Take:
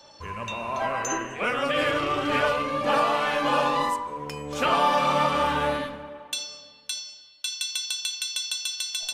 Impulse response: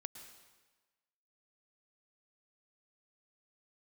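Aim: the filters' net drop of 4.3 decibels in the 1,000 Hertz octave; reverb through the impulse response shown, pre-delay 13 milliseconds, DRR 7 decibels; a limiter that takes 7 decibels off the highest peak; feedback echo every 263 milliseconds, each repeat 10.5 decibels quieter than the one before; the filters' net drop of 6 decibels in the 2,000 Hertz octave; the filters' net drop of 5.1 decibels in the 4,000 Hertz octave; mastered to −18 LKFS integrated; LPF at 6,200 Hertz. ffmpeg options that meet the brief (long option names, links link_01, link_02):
-filter_complex "[0:a]lowpass=6200,equalizer=frequency=1000:width_type=o:gain=-3.5,equalizer=frequency=2000:width_type=o:gain=-6,equalizer=frequency=4000:width_type=o:gain=-3.5,alimiter=limit=-20dB:level=0:latency=1,aecho=1:1:263|526|789:0.299|0.0896|0.0269,asplit=2[link_01][link_02];[1:a]atrim=start_sample=2205,adelay=13[link_03];[link_02][link_03]afir=irnorm=-1:irlink=0,volume=-3dB[link_04];[link_01][link_04]amix=inputs=2:normalize=0,volume=12.5dB"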